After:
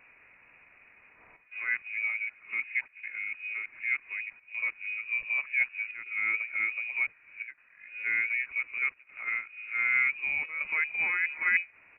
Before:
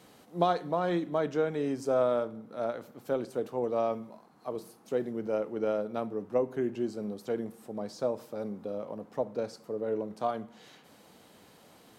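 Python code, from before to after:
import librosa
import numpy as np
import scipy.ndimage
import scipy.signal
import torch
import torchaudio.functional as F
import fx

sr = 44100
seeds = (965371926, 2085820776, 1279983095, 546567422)

y = np.flip(x).copy()
y = fx.freq_invert(y, sr, carrier_hz=2700)
y = fx.chopper(y, sr, hz=0.66, depth_pct=65, duty_pct=90)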